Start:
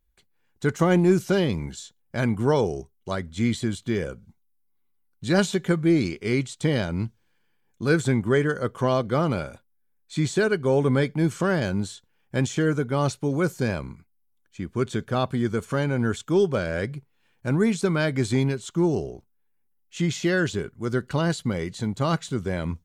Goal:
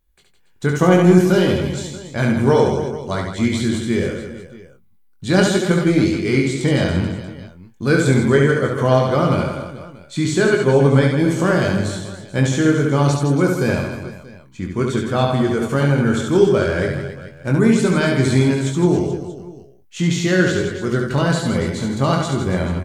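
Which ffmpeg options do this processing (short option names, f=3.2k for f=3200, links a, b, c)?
-filter_complex "[0:a]asplit=2[a][b];[b]adelay=22,volume=-5.5dB[c];[a][c]amix=inputs=2:normalize=0,aecho=1:1:70|161|279.3|433.1|633:0.631|0.398|0.251|0.158|0.1,volume=4dB"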